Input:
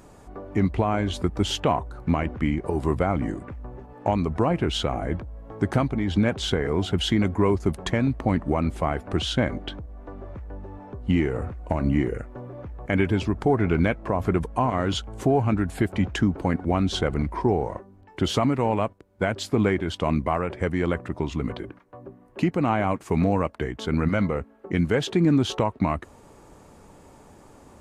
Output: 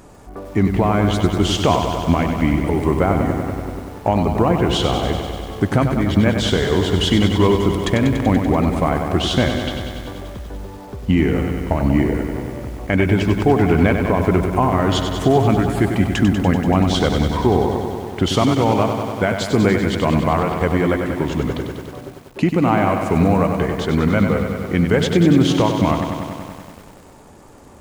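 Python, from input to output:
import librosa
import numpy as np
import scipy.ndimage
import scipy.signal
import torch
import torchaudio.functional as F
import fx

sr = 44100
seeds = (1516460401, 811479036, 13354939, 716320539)

p1 = x + fx.echo_feedback(x, sr, ms=203, feedback_pct=53, wet_db=-21, dry=0)
p2 = fx.echo_crushed(p1, sr, ms=96, feedback_pct=80, bits=8, wet_db=-7.0)
y = p2 * 10.0 ** (5.5 / 20.0)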